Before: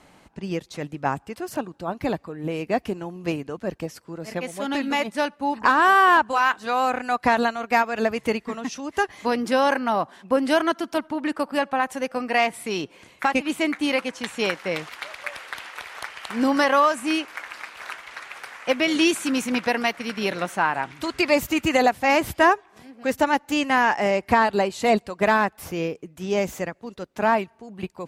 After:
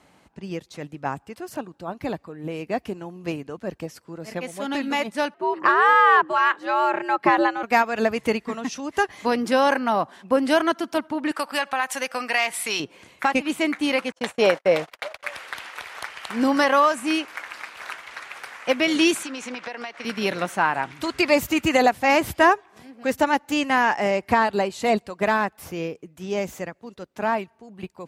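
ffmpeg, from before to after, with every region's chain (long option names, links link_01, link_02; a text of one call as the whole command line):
ffmpeg -i in.wav -filter_complex "[0:a]asettb=1/sr,asplit=3[link_01][link_02][link_03];[link_01]atrim=end=5.344[link_04];[link_02]atrim=start=5.34:end=7.63,asetpts=PTS-STARTPTS,afade=type=in:duration=0.004:curve=qsin,afade=type=out:start_time=2.286:duration=0.004:curve=qsin,bass=frequency=250:gain=5,treble=frequency=4000:gain=-12,afreqshift=100[link_05];[link_03]atrim=start=7.626[link_06];[link_04][link_05]acrossfade=duration=0.004:curve1=hsin:curve2=qsin[link_07];[link_07][link_06]acrossfade=duration=0.004:curve1=qsin:curve2=hsin,asettb=1/sr,asplit=3[link_08][link_09][link_10];[link_08]atrim=end=11.314[link_11];[link_09]atrim=start=11.31:end=12.8,asetpts=PTS-STARTPTS,afade=type=in:duration=0.004:curve=qsin,afade=type=out:start_time=1.486:duration=0.004:curve=qsin,tiltshelf=frequency=650:gain=-9.5,acompressor=threshold=-22dB:ratio=2:attack=3.2:release=140:knee=1:detection=peak[link_12];[link_10]atrim=start=12.796[link_13];[link_11][link_12]acrossfade=duration=0.004:curve1=hsin:curve2=qsin[link_14];[link_14][link_13]acrossfade=duration=0.004:curve1=qsin:curve2=hsin,asettb=1/sr,asplit=3[link_15][link_16][link_17];[link_15]atrim=end=14.124[link_18];[link_16]atrim=start=14.12:end=15.23,asetpts=PTS-STARTPTS,afade=type=in:duration=0.004:curve=qsin,afade=type=out:start_time=1.106:duration=0.004:curve=qsin,agate=range=-45dB:threshold=-38dB:ratio=16:release=100:detection=peak,equalizer=frequency=610:width=1.5:gain=12[link_19];[link_17]atrim=start=15.226[link_20];[link_18][link_19]acrossfade=duration=0.004:curve1=hsin:curve2=qsin[link_21];[link_21][link_20]acrossfade=duration=0.004:curve1=qsin:curve2=hsin,asettb=1/sr,asplit=3[link_22][link_23][link_24];[link_22]atrim=end=19.234[link_25];[link_23]atrim=start=19.23:end=20.05,asetpts=PTS-STARTPTS,afade=type=in:duration=0.004:curve=qsin,afade=type=out:start_time=0.816:duration=0.004:curve=qsin,acrossover=split=330 7700:gain=0.224 1 0.0708[link_26][link_27][link_28];[link_26][link_27][link_28]amix=inputs=3:normalize=0,acompressor=threshold=-29dB:ratio=16:attack=3.2:release=140:knee=1:detection=peak[link_29];[link_24]atrim=start=20.046[link_30];[link_25][link_29]acrossfade=duration=0.004:curve1=hsin:curve2=qsin[link_31];[link_31][link_30]acrossfade=duration=0.004:curve1=qsin:curve2=hsin,highpass=49,dynaudnorm=framelen=750:gausssize=13:maxgain=11.5dB,volume=-3.5dB" out.wav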